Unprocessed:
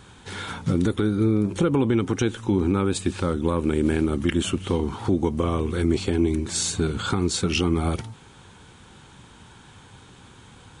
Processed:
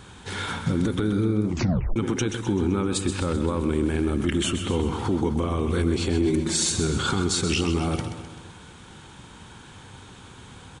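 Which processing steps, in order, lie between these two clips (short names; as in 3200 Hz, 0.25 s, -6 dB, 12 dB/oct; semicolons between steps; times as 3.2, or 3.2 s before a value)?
limiter -17.5 dBFS, peak gain reduction 6.5 dB; 6.25–6.7 comb 5.6 ms; feedback echo 0.129 s, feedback 53%, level -9 dB; 1.46 tape stop 0.50 s; gain +2.5 dB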